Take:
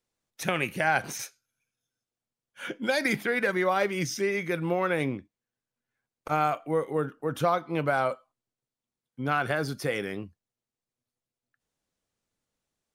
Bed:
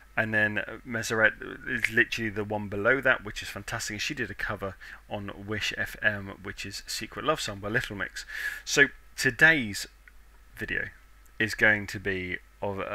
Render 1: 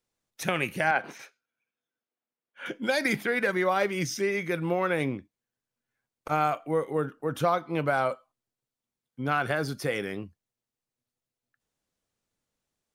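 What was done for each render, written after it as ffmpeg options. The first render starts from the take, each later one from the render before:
-filter_complex "[0:a]asettb=1/sr,asplit=3[s0][s1][s2];[s0]atrim=end=0.914[s3];[s1]atrim=start=0.91:end=2.66,asetpts=PTS-STARTPTS,afade=t=in:d=0.004:c=qsin,afade=t=out:st=1.746:d=0.004:c=qsin,acrossover=split=200 3300:gain=0.0794 1 0.112[s4][s5][s6];[s4][s5][s6]amix=inputs=3:normalize=0[s7];[s2]atrim=start=2.656[s8];[s3][s7]acrossfade=d=0.004:c1=hsin:c2=qsin[s9];[s9][s8]acrossfade=d=0.004:c1=qsin:c2=hsin"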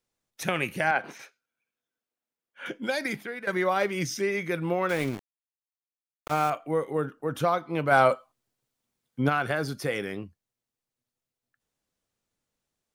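-filter_complex "[0:a]asettb=1/sr,asplit=3[s0][s1][s2];[s0]atrim=end=4.894[s3];[s1]atrim=start=4.89:end=6.5,asetpts=PTS-STARTPTS,afade=t=in:d=0.004:c=qsin,afade=t=out:st=1.606:d=0.004:c=qsin,aeval=exprs='val(0)*gte(abs(val(0)),0.02)':c=same[s4];[s2]atrim=start=6.496[s5];[s3][s4]acrossfade=d=0.004:c1=hsin:c2=qsin[s6];[s6][s5]acrossfade=d=0.004:c1=qsin:c2=hsin,asplit=3[s7][s8][s9];[s7]afade=t=out:st=7.9:d=0.02[s10];[s8]acontrast=86,afade=t=in:st=7.9:d=0.02,afade=t=out:st=9.28:d=0.02[s11];[s9]afade=t=in:st=9.28:d=0.02[s12];[s10][s11][s12]amix=inputs=3:normalize=0,asplit=2[s13][s14];[s13]atrim=end=3.47,asetpts=PTS-STARTPTS,afade=t=out:st=2.68:d=0.79:silence=0.199526[s15];[s14]atrim=start=3.47,asetpts=PTS-STARTPTS,afade=t=in:d=0.004:c=hsin:silence=0.199526[s16];[s15][s16]concat=n=2:v=0:a=1"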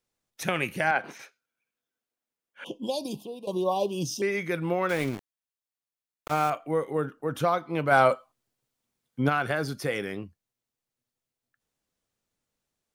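-filter_complex "[0:a]asettb=1/sr,asplit=3[s0][s1][s2];[s0]atrim=end=2.644[s3];[s1]atrim=start=2.64:end=4.22,asetpts=PTS-STARTPTS,afade=t=in:d=0.004:c=qsin,afade=t=out:st=1.576:d=0.004:c=qsin,asuperstop=centerf=1700:order=20:qfactor=1.1[s4];[s2]atrim=start=4.216[s5];[s3][s4]acrossfade=d=0.004:c1=hsin:c2=qsin[s6];[s6][s5]acrossfade=d=0.004:c1=qsin:c2=hsin"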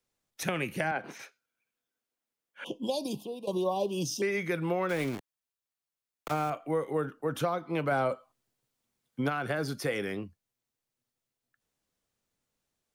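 -filter_complex "[0:a]acrossover=split=120|500[s0][s1][s2];[s0]acompressor=threshold=0.00316:ratio=4[s3];[s1]acompressor=threshold=0.0316:ratio=4[s4];[s2]acompressor=threshold=0.0282:ratio=4[s5];[s3][s4][s5]amix=inputs=3:normalize=0"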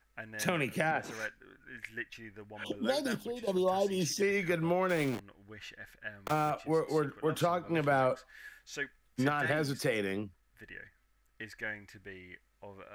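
-filter_complex "[1:a]volume=0.133[s0];[0:a][s0]amix=inputs=2:normalize=0"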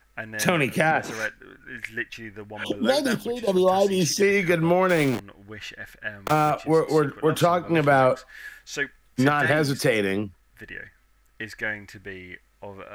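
-af "volume=3.16"

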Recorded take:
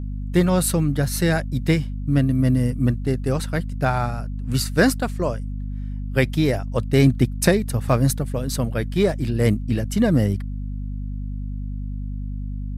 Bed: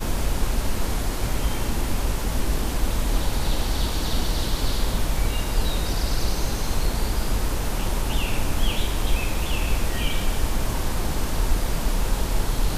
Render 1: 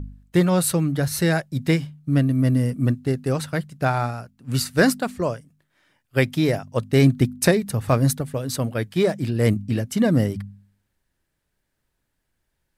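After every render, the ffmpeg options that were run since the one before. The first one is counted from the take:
-af "bandreject=f=50:t=h:w=4,bandreject=f=100:t=h:w=4,bandreject=f=150:t=h:w=4,bandreject=f=200:t=h:w=4,bandreject=f=250:t=h:w=4"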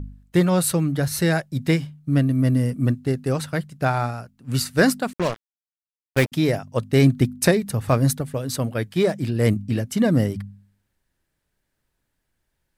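-filter_complex "[0:a]asettb=1/sr,asplit=3[s0][s1][s2];[s0]atrim=end=5.134[s3];[s1]atrim=start=5.13:end=6.32,asetpts=PTS-STARTPTS,afade=t=in:d=0.004:c=qsin,afade=t=out:st=1.186:d=0.004:c=qsin,acrusher=bits=3:mix=0:aa=0.5[s4];[s2]atrim=start=6.316[s5];[s3][s4]acrossfade=d=0.004:c1=hsin:c2=qsin[s6];[s6][s5]acrossfade=d=0.004:c1=qsin:c2=hsin"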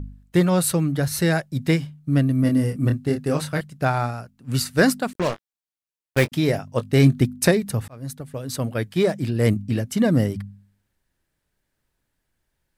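-filter_complex "[0:a]asettb=1/sr,asplit=3[s0][s1][s2];[s0]atrim=end=2.414[s3];[s1]atrim=start=2.41:end=3.61,asetpts=PTS-STARTPTS,afade=t=in:d=0.004:c=qsin,afade=t=out:st=1.196:d=0.004:c=qsin,asplit=2[s4][s5];[s5]adelay=27,volume=0.562[s6];[s4][s6]amix=inputs=2:normalize=0,atrim=end_sample=52920[s7];[s2]atrim=start=3.606[s8];[s3][s7]acrossfade=d=0.004:c1=hsin:c2=qsin[s9];[s9][s8]acrossfade=d=0.004:c1=qsin:c2=hsin,asettb=1/sr,asplit=3[s10][s11][s12];[s10]atrim=end=5.134[s13];[s11]atrim=start=5.13:end=7.2,asetpts=PTS-STARTPTS,afade=t=in:d=0.004:c=qsin,afade=t=out:st=2.066:d=0.004:c=qsin,asplit=2[s14][s15];[s15]adelay=21,volume=0.251[s16];[s14][s16]amix=inputs=2:normalize=0,atrim=end_sample=91287[s17];[s12]atrim=start=7.196[s18];[s13][s17]acrossfade=d=0.004:c1=hsin:c2=qsin[s19];[s19][s18]acrossfade=d=0.004:c1=qsin:c2=hsin,asplit=2[s20][s21];[s20]atrim=end=7.88,asetpts=PTS-STARTPTS,afade=t=out:st=7.876:d=0.004:c=hsin[s22];[s21]atrim=start=7.88,asetpts=PTS-STARTPTS,afade=t=in:d=0.85[s23];[s22][s23]concat=n=2:v=0:a=1"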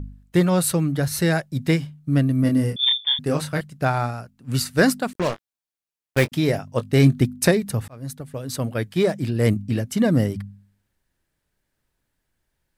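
-filter_complex "[0:a]asettb=1/sr,asplit=3[s0][s1][s2];[s0]atrim=end=2.764[s3];[s1]atrim=start=2.76:end=3.19,asetpts=PTS-STARTPTS,afade=t=in:d=0.004:c=qsin,afade=t=out:st=0.426:d=0.004:c=qsin,lowpass=f=3100:t=q:w=0.5098,lowpass=f=3100:t=q:w=0.6013,lowpass=f=3100:t=q:w=0.9,lowpass=f=3100:t=q:w=2.563,afreqshift=-3700[s4];[s2]atrim=start=3.186[s5];[s3][s4]acrossfade=d=0.004:c1=hsin:c2=qsin[s6];[s6][s5]acrossfade=d=0.004:c1=qsin:c2=hsin"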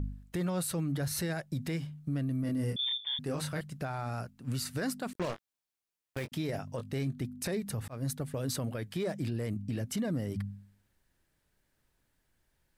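-af "acompressor=threshold=0.0447:ratio=6,alimiter=level_in=1.26:limit=0.0631:level=0:latency=1:release=20,volume=0.794"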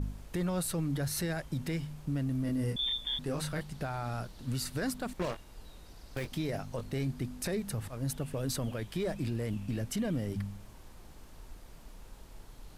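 -filter_complex "[1:a]volume=0.0422[s0];[0:a][s0]amix=inputs=2:normalize=0"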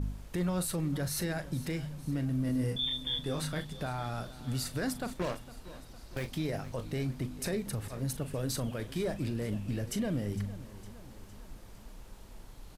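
-filter_complex "[0:a]asplit=2[s0][s1];[s1]adelay=39,volume=0.224[s2];[s0][s2]amix=inputs=2:normalize=0,aecho=1:1:458|916|1374|1832|2290:0.141|0.0805|0.0459|0.0262|0.0149"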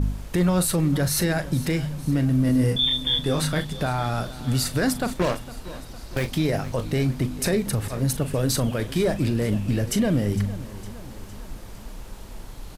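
-af "volume=3.55"

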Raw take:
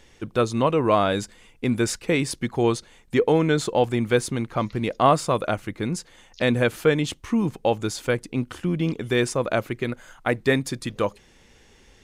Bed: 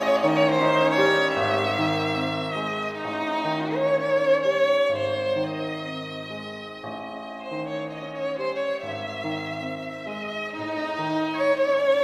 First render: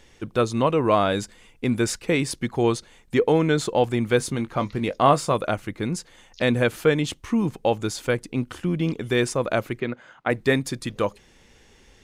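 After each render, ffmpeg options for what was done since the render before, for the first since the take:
-filter_complex "[0:a]asettb=1/sr,asplit=3[s0][s1][s2];[s0]atrim=end=4.184[s3];[s1]atrim=start=4.18:end=5.35,asetpts=PTS-STARTPTS,afade=t=in:d=0.004:c=qsin,afade=t=out:st=1.166:d=0.004:c=qsin,asplit=2[s4][s5];[s5]adelay=21,volume=0.251[s6];[s4][s6]amix=inputs=2:normalize=0,atrim=end_sample=51597[s7];[s2]atrim=start=5.346[s8];[s3][s7]acrossfade=d=0.004:c1=hsin:c2=qsin[s9];[s9][s8]acrossfade=d=0.004:c1=qsin:c2=hsin,asplit=3[s10][s11][s12];[s10]afade=t=out:st=9.79:d=0.02[s13];[s11]highpass=130,lowpass=3400,afade=t=in:st=9.79:d=0.02,afade=t=out:st=10.29:d=0.02[s14];[s12]afade=t=in:st=10.29:d=0.02[s15];[s13][s14][s15]amix=inputs=3:normalize=0"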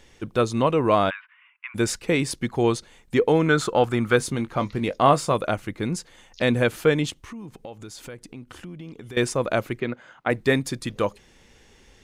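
-filter_complex "[0:a]asplit=3[s0][s1][s2];[s0]afade=t=out:st=1.09:d=0.02[s3];[s1]asuperpass=centerf=1700:order=12:qfactor=0.91,afade=t=in:st=1.09:d=0.02,afade=t=out:st=1.74:d=0.02[s4];[s2]afade=t=in:st=1.74:d=0.02[s5];[s3][s4][s5]amix=inputs=3:normalize=0,asettb=1/sr,asplit=3[s6][s7][s8];[s6]atrim=end=3.464[s9];[s7]atrim=start=3.46:end=4.16,asetpts=PTS-STARTPTS,afade=t=in:d=0.004:c=qsin,afade=t=out:st=0.696:d=0.004:c=qsin,equalizer=f=1300:t=o:w=0.49:g=12[s10];[s8]atrim=start=4.156[s11];[s9][s10]acrossfade=d=0.004:c1=hsin:c2=qsin[s12];[s12][s11]acrossfade=d=0.004:c1=qsin:c2=hsin,asettb=1/sr,asplit=3[s13][s14][s15];[s13]atrim=end=7.104[s16];[s14]atrim=start=7.1:end=9.17,asetpts=PTS-STARTPTS,afade=t=in:d=0.004:c=qsin,afade=t=out:st=2.066:d=0.004:c=qsin,acompressor=threshold=0.0126:ratio=4:attack=3.2:release=140:knee=1:detection=peak[s17];[s15]atrim=start=9.166[s18];[s16][s17]acrossfade=d=0.004:c1=hsin:c2=qsin[s19];[s19][s18]acrossfade=d=0.004:c1=qsin:c2=hsin"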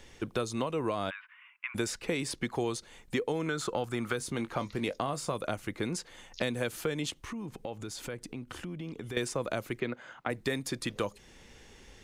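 -filter_complex "[0:a]alimiter=limit=0.251:level=0:latency=1:release=243,acrossover=split=290|4500[s0][s1][s2];[s0]acompressor=threshold=0.0112:ratio=4[s3];[s1]acompressor=threshold=0.0251:ratio=4[s4];[s2]acompressor=threshold=0.0112:ratio=4[s5];[s3][s4][s5]amix=inputs=3:normalize=0"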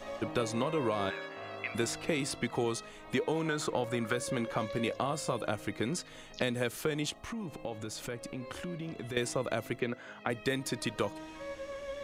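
-filter_complex "[1:a]volume=0.0944[s0];[0:a][s0]amix=inputs=2:normalize=0"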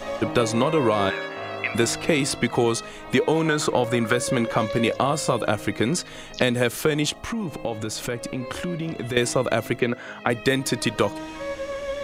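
-af "volume=3.55"

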